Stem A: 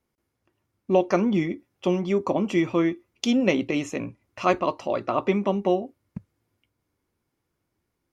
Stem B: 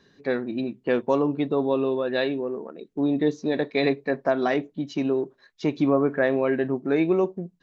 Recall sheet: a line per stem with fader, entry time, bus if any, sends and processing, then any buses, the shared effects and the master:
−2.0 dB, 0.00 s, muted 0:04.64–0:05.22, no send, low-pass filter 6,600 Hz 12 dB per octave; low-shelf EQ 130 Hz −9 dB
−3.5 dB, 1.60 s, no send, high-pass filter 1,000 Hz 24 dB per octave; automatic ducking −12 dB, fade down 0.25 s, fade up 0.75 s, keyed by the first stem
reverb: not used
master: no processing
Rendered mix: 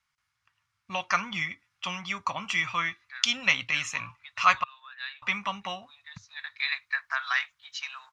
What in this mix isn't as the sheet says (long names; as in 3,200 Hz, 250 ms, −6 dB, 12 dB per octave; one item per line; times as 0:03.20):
stem B: entry 1.60 s → 2.85 s
master: extra drawn EQ curve 130 Hz 0 dB, 370 Hz −29 dB, 1,200 Hz +9 dB